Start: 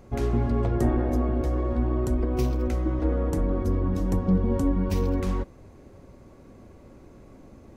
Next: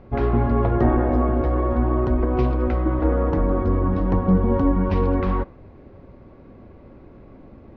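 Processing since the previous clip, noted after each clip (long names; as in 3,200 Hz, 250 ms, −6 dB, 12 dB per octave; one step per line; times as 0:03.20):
Bessel low-pass filter 2,600 Hz, order 8
dynamic equaliser 1,100 Hz, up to +7 dB, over −45 dBFS, Q 0.75
level +4 dB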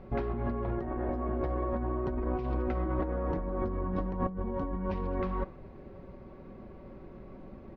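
comb filter 5.3 ms, depth 40%
compressor whose output falls as the input rises −24 dBFS, ratio −1
level −8 dB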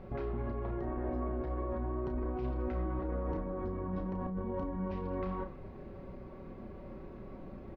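brickwall limiter −30 dBFS, peak gain reduction 11 dB
double-tracking delay 32 ms −7 dB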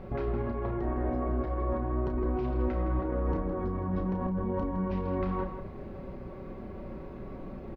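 slap from a distant wall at 28 metres, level −9 dB
level +5 dB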